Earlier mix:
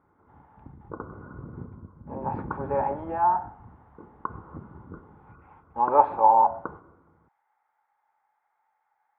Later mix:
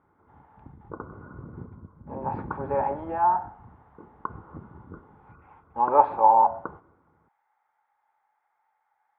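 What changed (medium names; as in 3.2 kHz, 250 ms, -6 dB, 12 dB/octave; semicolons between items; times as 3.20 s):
background: send -6.5 dB; master: remove distance through air 94 m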